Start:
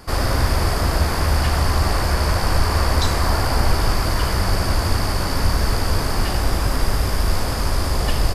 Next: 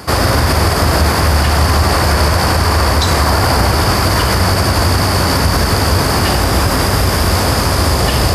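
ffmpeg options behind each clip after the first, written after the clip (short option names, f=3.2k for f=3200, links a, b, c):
-af "highpass=f=65:w=0.5412,highpass=f=65:w=1.3066,areverse,acompressor=mode=upward:threshold=-22dB:ratio=2.5,areverse,alimiter=level_in=13.5dB:limit=-1dB:release=50:level=0:latency=1,volume=-2dB"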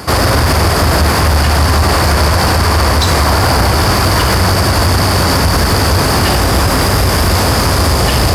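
-af "acontrast=88,volume=-3dB"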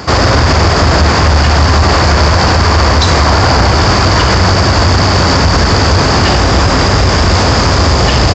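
-af "aresample=16000,aresample=44100,volume=2.5dB"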